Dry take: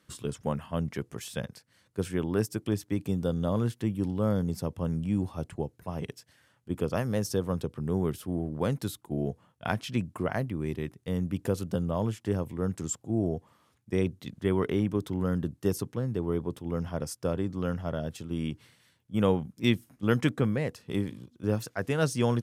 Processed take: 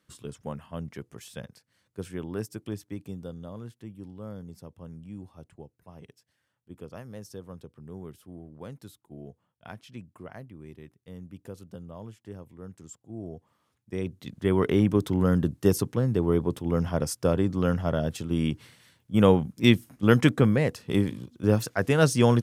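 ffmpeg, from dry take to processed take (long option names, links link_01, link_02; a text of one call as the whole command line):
ffmpeg -i in.wav -af "volume=13.5dB,afade=type=out:start_time=2.67:duration=0.84:silence=0.421697,afade=type=in:start_time=13:duration=1.01:silence=0.375837,afade=type=in:start_time=14.01:duration=0.86:silence=0.298538" out.wav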